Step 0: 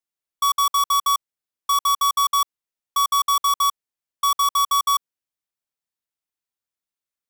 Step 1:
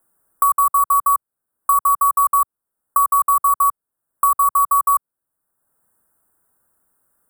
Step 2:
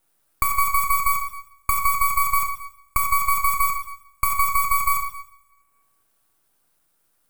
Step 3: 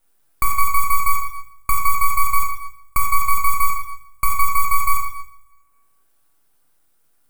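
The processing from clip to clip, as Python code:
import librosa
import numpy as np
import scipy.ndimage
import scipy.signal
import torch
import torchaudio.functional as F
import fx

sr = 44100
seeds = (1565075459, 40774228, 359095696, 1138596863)

y1 = scipy.signal.sosfilt(scipy.signal.ellip(3, 1.0, 40, [1500.0, 8600.0], 'bandstop', fs=sr, output='sos'), x)
y1 = fx.band_squash(y1, sr, depth_pct=70)
y1 = y1 * librosa.db_to_amplitude(5.0)
y2 = fx.rev_double_slope(y1, sr, seeds[0], early_s=0.68, late_s=2.0, knee_db=-27, drr_db=1.5)
y2 = np.maximum(y2, 0.0)
y3 = fx.room_shoebox(y2, sr, seeds[1], volume_m3=41.0, walls='mixed', distance_m=0.34)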